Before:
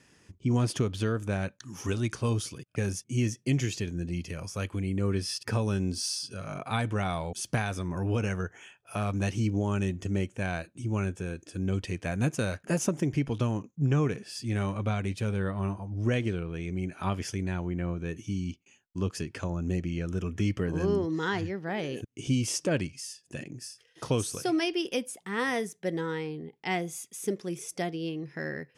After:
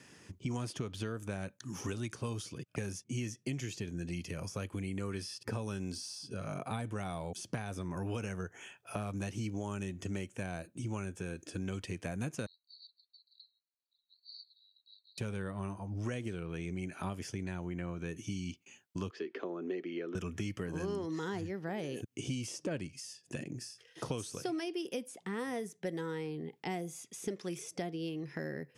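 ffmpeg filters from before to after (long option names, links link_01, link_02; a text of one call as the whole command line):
ffmpeg -i in.wav -filter_complex "[0:a]asettb=1/sr,asplit=3[link_01][link_02][link_03];[link_01]atrim=end=12.464[link_04];[link_02]atrim=start=12.46:end=15.18,asetpts=PTS-STARTPTS,afade=type=in:duration=0.004:curve=qsin,afade=type=out:start_time=2.716:duration=0.004:curve=qsin,asuperpass=centerf=4200:order=12:qfactor=5.7[link_05];[link_03]atrim=start=15.176[link_06];[link_04][link_05]acrossfade=duration=0.004:curve1=hsin:curve2=qsin[link_07];[link_07][link_06]acrossfade=duration=0.004:curve1=qsin:curve2=hsin,asettb=1/sr,asplit=3[link_08][link_09][link_10];[link_08]atrim=end=19.104[link_11];[link_09]atrim=start=19.1:end=20.15,asetpts=PTS-STARTPTS,afade=type=in:duration=0.004:curve=qsin,afade=type=out:start_time=1.046:duration=0.004:curve=qsin,highpass=frequency=280:width=0.5412,highpass=frequency=280:width=1.3066,equalizer=frequency=390:width_type=q:width=4:gain=9,equalizer=frequency=590:width_type=q:width=4:gain=-4,equalizer=frequency=890:width_type=q:width=4:gain=-6,equalizer=frequency=1500:width_type=q:width=4:gain=-4,equalizer=frequency=2600:width_type=q:width=4:gain=-8,lowpass=frequency=3400:width=0.5412,lowpass=frequency=3400:width=1.3066[link_12];[link_10]atrim=start=20.146[link_13];[link_11][link_12]acrossfade=duration=0.004:curve1=hsin:curve2=qsin[link_14];[link_14][link_13]acrossfade=duration=0.004:curve1=qsin:curve2=hsin,highpass=91,acrossover=split=760|7500[link_15][link_16][link_17];[link_15]acompressor=threshold=-41dB:ratio=4[link_18];[link_16]acompressor=threshold=-51dB:ratio=4[link_19];[link_17]acompressor=threshold=-60dB:ratio=4[link_20];[link_18][link_19][link_20]amix=inputs=3:normalize=0,volume=3.5dB" out.wav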